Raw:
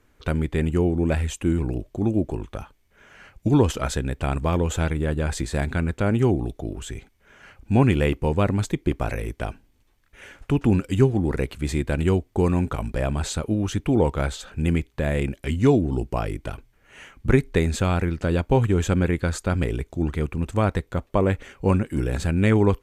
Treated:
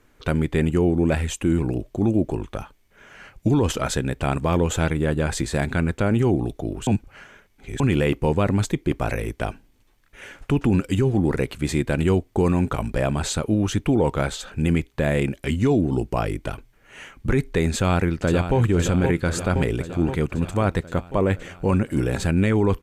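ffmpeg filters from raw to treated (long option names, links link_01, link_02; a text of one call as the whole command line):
ffmpeg -i in.wav -filter_complex "[0:a]asplit=2[link_01][link_02];[link_02]afade=type=in:start_time=17.75:duration=0.01,afade=type=out:start_time=18.59:duration=0.01,aecho=0:1:520|1040|1560|2080|2600|3120|3640|4160|4680|5200:0.334965|0.234476|0.164133|0.114893|0.0804252|0.0562976|0.0394083|0.0275858|0.0193101|0.0135171[link_03];[link_01][link_03]amix=inputs=2:normalize=0,asplit=3[link_04][link_05][link_06];[link_04]atrim=end=6.872[link_07];[link_05]atrim=start=6.868:end=7.802,asetpts=PTS-STARTPTS,areverse[link_08];[link_06]atrim=start=7.798[link_09];[link_07][link_08]acrossfade=duration=0.004:curve1=hsin:curve2=hsin[link_10];[link_10][link_09]acrossfade=duration=0.004:curve1=hsin:curve2=hsin,equalizer=frequency=67:width_type=o:width=0.52:gain=-9.5,alimiter=limit=-14.5dB:level=0:latency=1:release=12,volume=3.5dB" out.wav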